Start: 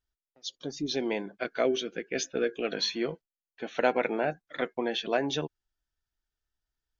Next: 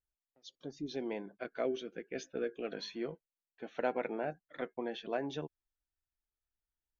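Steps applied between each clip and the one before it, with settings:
high-shelf EQ 2,500 Hz −10.5 dB
level −7.5 dB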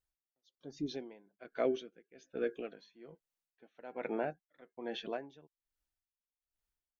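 tremolo with a sine in dB 1.2 Hz, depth 23 dB
level +3 dB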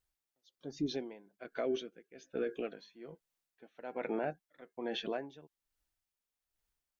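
brickwall limiter −30 dBFS, peak gain reduction 10 dB
level +4 dB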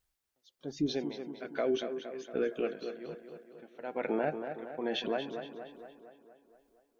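tape delay 233 ms, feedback 63%, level −6.5 dB, low-pass 3,100 Hz
level +4 dB

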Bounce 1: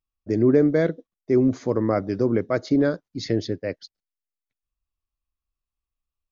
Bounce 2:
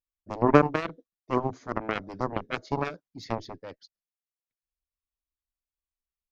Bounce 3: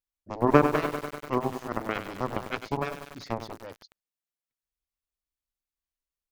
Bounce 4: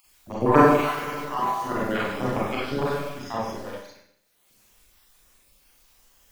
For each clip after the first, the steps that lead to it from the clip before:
harmonic generator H 3 −8 dB, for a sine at −7 dBFS; level +4 dB
feedback echo at a low word length 98 ms, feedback 80%, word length 6 bits, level −9 dB; level −1 dB
time-frequency cells dropped at random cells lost 32%; upward compression, threshold −43 dBFS; four-comb reverb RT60 0.69 s, combs from 31 ms, DRR −6.5 dB

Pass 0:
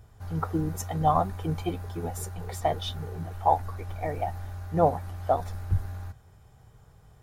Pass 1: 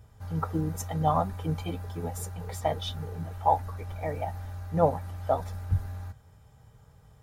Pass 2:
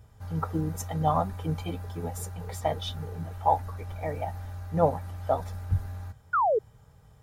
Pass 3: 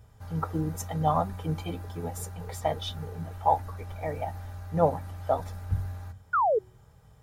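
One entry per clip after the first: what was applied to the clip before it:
notch comb filter 360 Hz
sound drawn into the spectrogram fall, 0:06.33–0:06.59, 400–1,500 Hz −23 dBFS
hum removal 46.4 Hz, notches 8

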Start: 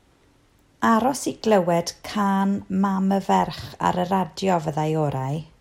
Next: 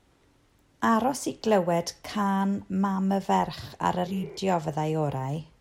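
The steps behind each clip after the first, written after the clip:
healed spectral selection 0:04.09–0:04.36, 280–2,400 Hz after
level −4.5 dB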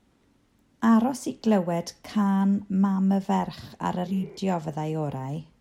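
parametric band 220 Hz +11 dB 0.56 octaves
level −3.5 dB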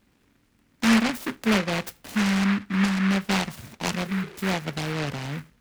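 short delay modulated by noise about 1,600 Hz, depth 0.25 ms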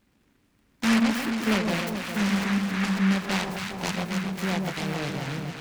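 delay that swaps between a low-pass and a high-pass 136 ms, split 970 Hz, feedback 82%, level −4 dB
level −3 dB

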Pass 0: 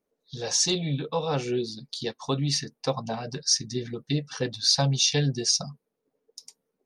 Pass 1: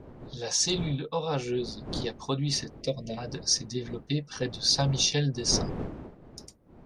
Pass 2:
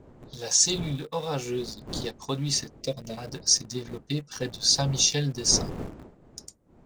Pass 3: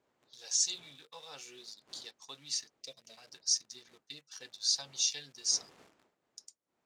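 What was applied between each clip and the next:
wind on the microphone 340 Hz −38 dBFS; gain on a spectral selection 0:02.81–0:03.17, 670–1,800 Hz −21 dB; level −2.5 dB
parametric band 7,400 Hz +10.5 dB 0.64 octaves; in parallel at −6 dB: centre clipping without the shift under −33.5 dBFS; on the sum: level −4 dB
resonant band-pass 4,900 Hz, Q 0.57; level −8 dB

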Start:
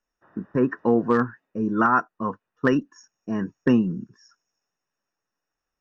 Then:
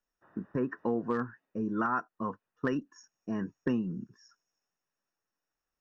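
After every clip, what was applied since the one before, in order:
downward compressor 2 to 1, threshold −26 dBFS, peak gain reduction 7 dB
level −5 dB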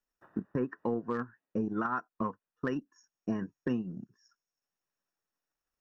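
transient designer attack +9 dB, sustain −6 dB
brickwall limiter −19 dBFS, peak gain reduction 10 dB
level −2.5 dB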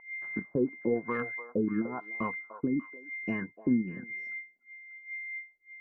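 steady tone 2,100 Hz −41 dBFS
auto-filter low-pass sine 1 Hz 260–2,900 Hz
echo through a band-pass that steps 296 ms, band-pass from 700 Hz, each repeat 1.4 octaves, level −7 dB
level −1 dB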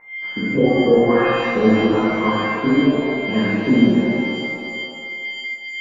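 reverb with rising layers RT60 2 s, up +7 semitones, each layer −8 dB, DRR −11 dB
level +5 dB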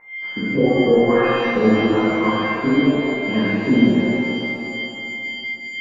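four-comb reverb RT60 3.8 s, DRR 10.5 dB
level −1 dB

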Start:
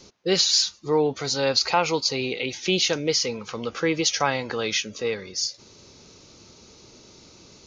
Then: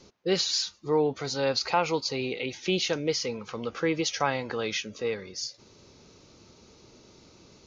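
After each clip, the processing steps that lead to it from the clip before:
high-shelf EQ 3,700 Hz −7.5 dB
level −3 dB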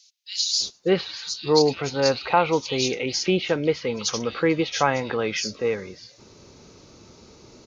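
multiband delay without the direct sound highs, lows 600 ms, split 3,200 Hz
level +6 dB

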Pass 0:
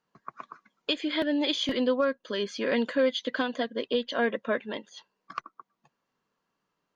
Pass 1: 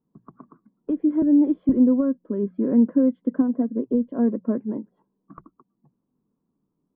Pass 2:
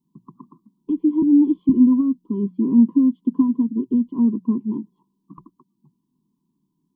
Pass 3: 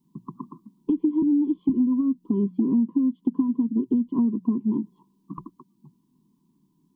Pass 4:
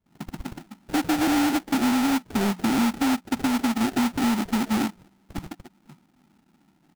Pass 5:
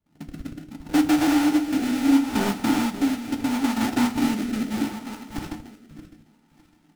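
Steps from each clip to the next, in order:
low-pass filter 1,000 Hz 24 dB per octave; low shelf with overshoot 410 Hz +12.5 dB, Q 1.5; mains-hum notches 60/120/180 Hz; level −2.5 dB
drawn EQ curve 100 Hz 0 dB, 160 Hz +9 dB, 370 Hz +5 dB, 610 Hz −30 dB, 1,000 Hz +12 dB, 1,500 Hz −29 dB, 3,000 Hz +9 dB; level −3.5 dB
downward compressor 6 to 1, threshold −26 dBFS, peak gain reduction 15.5 dB; level +6 dB
mid-hump overdrive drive 23 dB, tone 1,000 Hz, clips at −11 dBFS; multiband delay without the direct sound highs, lows 50 ms, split 660 Hz; sample-rate reduction 1,100 Hz, jitter 20%; level −3 dB
feedback delay that plays each chunk backwards 303 ms, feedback 48%, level −8 dB; rotating-speaker cabinet horn 0.7 Hz; feedback delay network reverb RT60 0.31 s, low-frequency decay 1.2×, high-frequency decay 0.95×, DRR 6.5 dB

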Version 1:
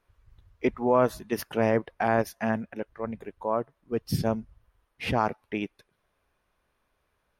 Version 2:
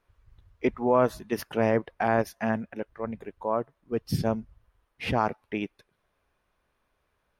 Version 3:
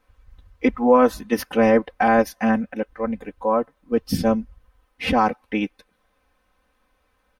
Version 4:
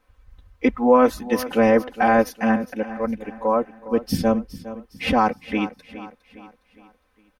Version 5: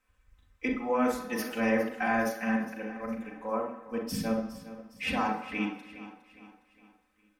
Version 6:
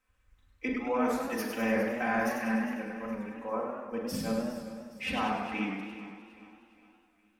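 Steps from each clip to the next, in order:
high-shelf EQ 7,200 Hz −4 dB
comb filter 3.9 ms, depth 99%; level +4.5 dB
repeating echo 410 ms, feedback 44%, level −15 dB
convolution reverb RT60 1.0 s, pre-delay 37 ms, DRR 3.5 dB; level −7.5 dB
feedback echo with a swinging delay time 99 ms, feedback 63%, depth 135 cents, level −6 dB; level −2.5 dB

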